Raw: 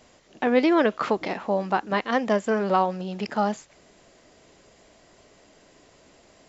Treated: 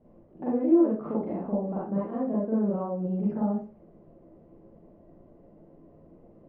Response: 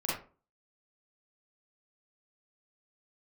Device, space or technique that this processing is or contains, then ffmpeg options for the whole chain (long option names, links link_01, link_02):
television next door: -filter_complex "[0:a]acompressor=threshold=-27dB:ratio=3,lowpass=400[link_01];[1:a]atrim=start_sample=2205[link_02];[link_01][link_02]afir=irnorm=-1:irlink=0"